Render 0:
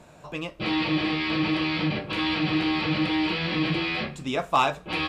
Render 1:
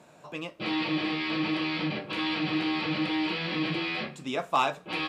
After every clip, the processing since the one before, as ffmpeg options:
-af "highpass=160,volume=-3.5dB"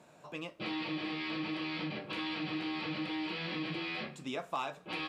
-af "acompressor=threshold=-31dB:ratio=2.5,volume=-4.5dB"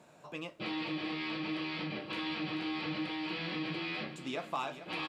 -af "aecho=1:1:438|876|1314|1752:0.237|0.104|0.0459|0.0202"

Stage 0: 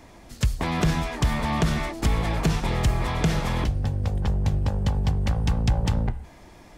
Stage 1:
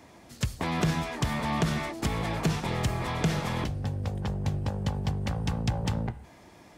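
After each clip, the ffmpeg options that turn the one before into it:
-af "highpass=92,volume=-3dB"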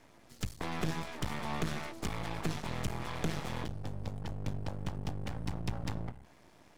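-af "aeval=exprs='max(val(0),0)':c=same,volume=-4dB"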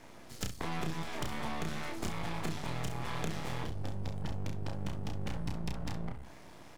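-filter_complex "[0:a]acompressor=threshold=-39dB:ratio=6,asplit=2[a][b];[b]aecho=0:1:31|66:0.596|0.299[c];[a][c]amix=inputs=2:normalize=0,volume=5.5dB"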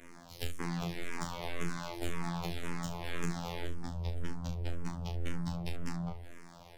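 -filter_complex "[0:a]afftfilt=real='hypot(re,im)*cos(PI*b)':imag='0':win_size=2048:overlap=0.75,asplit=2[a][b];[b]afreqshift=-1.9[c];[a][c]amix=inputs=2:normalize=1,volume=6dB"

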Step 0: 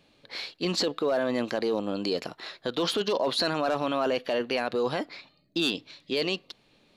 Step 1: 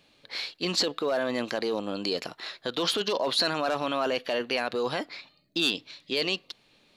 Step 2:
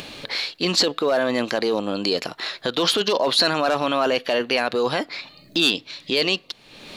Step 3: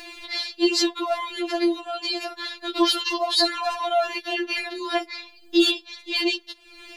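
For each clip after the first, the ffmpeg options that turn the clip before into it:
-af "tiltshelf=f=970:g=-3"
-af "acompressor=mode=upward:threshold=-30dB:ratio=2.5,volume=7dB"
-af "afftfilt=real='re*4*eq(mod(b,16),0)':imag='im*4*eq(mod(b,16),0)':win_size=2048:overlap=0.75"

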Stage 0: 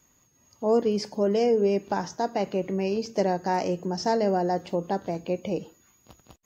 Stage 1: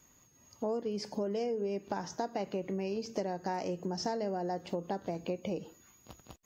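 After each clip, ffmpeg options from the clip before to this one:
-af "acompressor=threshold=-32dB:ratio=6"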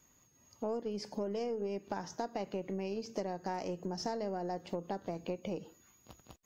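-af "aeval=exprs='0.106*(cos(1*acos(clip(val(0)/0.106,-1,1)))-cos(1*PI/2))+0.00188*(cos(6*acos(clip(val(0)/0.106,-1,1)))-cos(6*PI/2))+0.0015*(cos(7*acos(clip(val(0)/0.106,-1,1)))-cos(7*PI/2))':c=same,volume=-2.5dB"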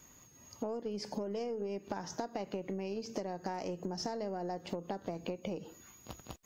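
-af "acompressor=threshold=-44dB:ratio=4,volume=8dB"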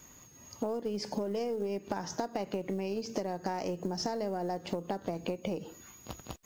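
-af "acrusher=bits=8:mode=log:mix=0:aa=0.000001,volume=4dB"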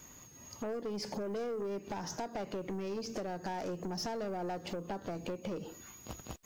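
-af "aeval=exprs='(tanh(50.1*val(0)+0.15)-tanh(0.15))/50.1':c=same,volume=1dB"

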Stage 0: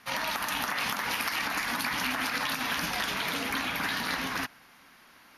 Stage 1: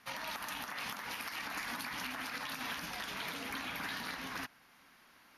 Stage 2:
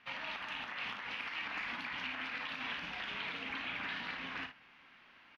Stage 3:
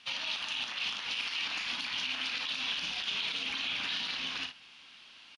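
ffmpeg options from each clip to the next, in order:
-af "alimiter=limit=-22.5dB:level=0:latency=1:release=426,volume=-6.5dB"
-af "areverse,acompressor=mode=upward:threshold=-55dB:ratio=2.5,areverse,lowpass=f=2.8k:t=q:w=2.3,aecho=1:1:34|58:0.316|0.316,volume=-4dB"
-af "aresample=22050,aresample=44100,aexciter=amount=9:drive=3.1:freq=2.9k,alimiter=limit=-24dB:level=0:latency=1:release=44"

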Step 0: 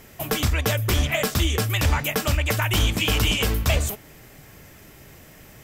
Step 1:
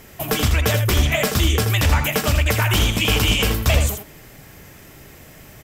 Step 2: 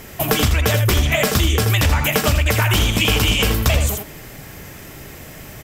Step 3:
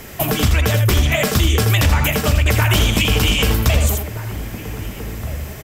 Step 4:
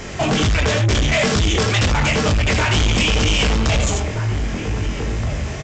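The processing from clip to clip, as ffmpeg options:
-af "aecho=1:1:81:0.422,volume=3dB"
-af "acompressor=threshold=-20dB:ratio=4,volume=6.5dB"
-filter_complex "[0:a]acrossover=split=290[a][b];[b]alimiter=limit=-9.5dB:level=0:latency=1:release=282[c];[a][c]amix=inputs=2:normalize=0,asplit=2[d][e];[e]adelay=1574,volume=-11dB,highshelf=f=4k:g=-35.4[f];[d][f]amix=inputs=2:normalize=0,volume=2dB"
-af "flanger=delay=19:depth=4:speed=2.1,aresample=16000,asoftclip=type=tanh:threshold=-22.5dB,aresample=44100,volume=9dB"

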